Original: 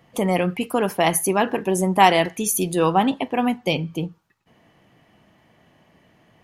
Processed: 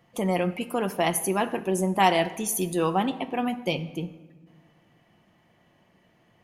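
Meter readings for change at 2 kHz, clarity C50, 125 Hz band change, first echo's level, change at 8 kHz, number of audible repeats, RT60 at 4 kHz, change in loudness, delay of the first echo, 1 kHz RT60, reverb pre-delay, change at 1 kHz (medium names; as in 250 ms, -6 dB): -5.5 dB, 15.0 dB, -5.0 dB, no echo, -5.5 dB, no echo, 0.85 s, -5.5 dB, no echo, 1.2 s, 6 ms, -6.0 dB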